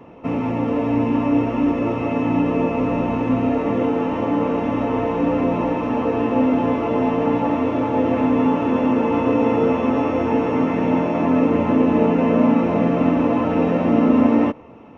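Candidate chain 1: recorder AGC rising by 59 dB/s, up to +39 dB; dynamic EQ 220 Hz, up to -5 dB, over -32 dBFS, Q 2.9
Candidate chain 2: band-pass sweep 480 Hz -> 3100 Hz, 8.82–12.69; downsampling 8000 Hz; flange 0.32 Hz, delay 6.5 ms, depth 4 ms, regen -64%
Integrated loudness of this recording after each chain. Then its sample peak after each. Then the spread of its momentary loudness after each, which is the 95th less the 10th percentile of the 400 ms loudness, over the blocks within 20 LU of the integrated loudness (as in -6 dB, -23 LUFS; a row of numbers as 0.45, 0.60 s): -19.0, -31.0 LUFS; -5.0, -16.5 dBFS; 2, 14 LU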